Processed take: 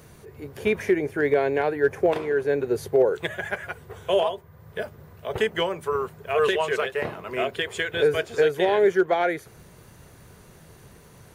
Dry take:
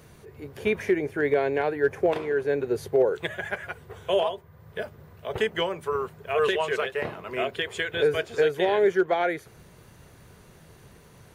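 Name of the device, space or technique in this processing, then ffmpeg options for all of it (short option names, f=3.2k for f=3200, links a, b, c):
exciter from parts: -filter_complex "[0:a]asplit=2[a][b];[b]highpass=f=3.7k:p=1,asoftclip=type=tanh:threshold=-31dB,highpass=3.1k,volume=-8.5dB[c];[a][c]amix=inputs=2:normalize=0,volume=2dB"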